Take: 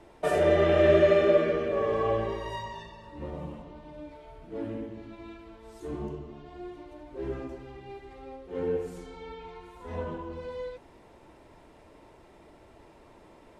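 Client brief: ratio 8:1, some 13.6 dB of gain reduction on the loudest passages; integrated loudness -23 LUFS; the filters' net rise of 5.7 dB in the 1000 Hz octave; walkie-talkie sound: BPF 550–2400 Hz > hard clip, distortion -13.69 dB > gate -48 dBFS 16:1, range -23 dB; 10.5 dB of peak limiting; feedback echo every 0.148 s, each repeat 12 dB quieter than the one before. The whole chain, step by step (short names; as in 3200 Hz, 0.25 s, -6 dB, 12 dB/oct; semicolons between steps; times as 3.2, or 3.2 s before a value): bell 1000 Hz +8 dB; compressor 8:1, threshold -28 dBFS; limiter -30 dBFS; BPF 550–2400 Hz; feedback echo 0.148 s, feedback 25%, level -12 dB; hard clip -38.5 dBFS; gate -48 dBFS 16:1, range -23 dB; gain +21 dB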